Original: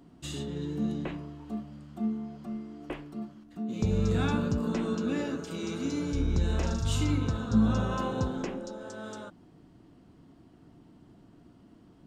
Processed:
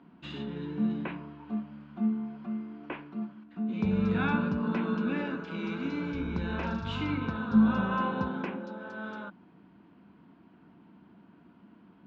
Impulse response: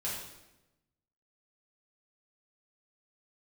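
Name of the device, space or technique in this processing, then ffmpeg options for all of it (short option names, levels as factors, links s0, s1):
guitar cabinet: -af "highpass=99,equalizer=f=120:t=q:w=4:g=-9,equalizer=f=200:t=q:w=4:g=9,equalizer=f=970:t=q:w=4:g=9,equalizer=f=1500:t=q:w=4:g=9,equalizer=f=2400:t=q:w=4:g=8,lowpass=f=3800:w=0.5412,lowpass=f=3800:w=1.3066,volume=0.708"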